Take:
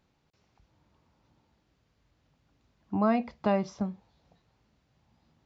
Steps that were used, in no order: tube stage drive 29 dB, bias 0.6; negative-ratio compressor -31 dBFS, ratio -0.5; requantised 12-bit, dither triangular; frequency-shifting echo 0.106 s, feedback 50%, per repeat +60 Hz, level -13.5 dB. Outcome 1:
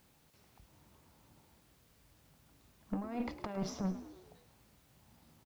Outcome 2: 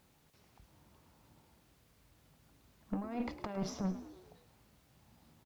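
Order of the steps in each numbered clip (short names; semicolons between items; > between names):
negative-ratio compressor > tube stage > frequency-shifting echo > requantised; negative-ratio compressor > requantised > tube stage > frequency-shifting echo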